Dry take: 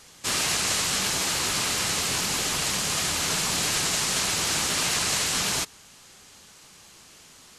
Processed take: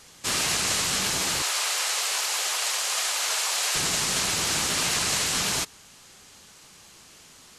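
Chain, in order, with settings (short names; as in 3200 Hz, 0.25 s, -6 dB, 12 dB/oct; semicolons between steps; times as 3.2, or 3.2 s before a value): 1.42–3.75 HPF 540 Hz 24 dB/oct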